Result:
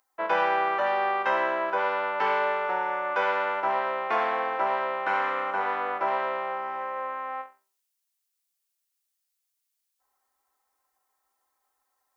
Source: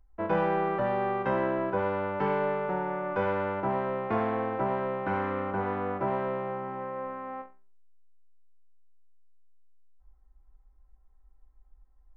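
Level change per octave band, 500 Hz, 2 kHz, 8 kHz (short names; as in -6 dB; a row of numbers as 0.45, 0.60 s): -0.5 dB, +8.5 dB, n/a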